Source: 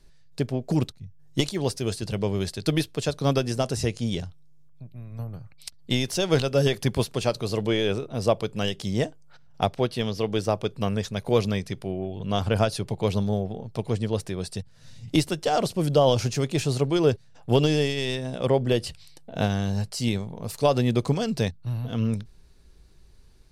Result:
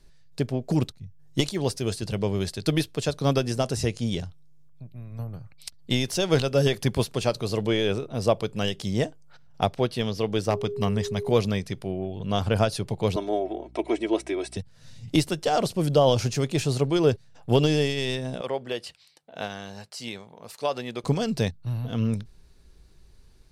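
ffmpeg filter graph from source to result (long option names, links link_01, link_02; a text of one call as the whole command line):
ffmpeg -i in.wav -filter_complex "[0:a]asettb=1/sr,asplit=3[link_01][link_02][link_03];[link_01]atrim=end=10.504[link_04];[link_02]atrim=start=10.5:end=11.31,asetpts=PTS-STARTPTS,afade=type=in:duration=0.004:curve=qsin,afade=type=out:start_time=0.806:duration=0.004:curve=qsin,aecho=1:1:1:0.31,atrim=end_sample=35721,aeval=exprs='0.224*(abs(mod(val(0)/0.224+3,4)-2)-1)':channel_layout=same,aeval=exprs='val(0)+0.0316*sin(2*PI*410*n/s)':channel_layout=same[link_05];[link_03]atrim=start=11.306[link_06];[link_04][link_05]acrossfade=duration=0.004:curve1=hsin:curve2=qsin[link_07];[link_07][link_06]acrossfade=duration=0.004:curve1=qsin:curve2=hsin,asettb=1/sr,asplit=3[link_08][link_09][link_10];[link_08]atrim=end=13.164[link_11];[link_09]atrim=start=13.16:end=14.57,asetpts=PTS-STARTPTS,afade=type=in:duration=0.004:curve=qsin,afade=type=out:start_time=1.406:duration=0.004:curve=qsin,highpass=frequency=300:width=0.5412,highpass=frequency=300:width=1.3066,equalizer=frequency=330:width_type=q:width=4:gain=9,equalizer=frequency=750:width_type=q:width=4:gain=6,equalizer=frequency=2200:width_type=q:width=4:gain=9,equalizer=frequency=4600:width_type=q:width=4:gain=-9,equalizer=frequency=6800:width_type=q:width=4:gain=-4,lowpass=frequency=9100:width=0.5412,lowpass=frequency=9100:width=1.3066,aecho=1:1:3.1:0.72,atrim=end_sample=62181,aeval=exprs='val(0)+0.00355*(sin(2*PI*60*n/s)+sin(2*PI*2*60*n/s)/2+sin(2*PI*3*60*n/s)/3+sin(2*PI*4*60*n/s)/4+sin(2*PI*5*60*n/s)/5)':channel_layout=same[link_12];[link_10]atrim=start=14.566[link_13];[link_11][link_12]acrossfade=duration=0.004:curve1=hsin:curve2=qsin[link_14];[link_14][link_13]acrossfade=duration=0.004:curve1=qsin:curve2=hsin,asettb=1/sr,asplit=3[link_15][link_16][link_17];[link_15]atrim=end=18.414[link_18];[link_16]atrim=start=18.41:end=21.04,asetpts=PTS-STARTPTS,afade=type=in:duration=0.004:curve=qsin,afade=type=out:start_time=2.626:duration=0.004:curve=qsin,highpass=frequency=1000:poles=1,highshelf=frequency=4400:gain=-9[link_19];[link_17]atrim=start=21.036[link_20];[link_18][link_19]acrossfade=duration=0.004:curve1=hsin:curve2=qsin[link_21];[link_21][link_20]acrossfade=duration=0.004:curve1=qsin:curve2=hsin" out.wav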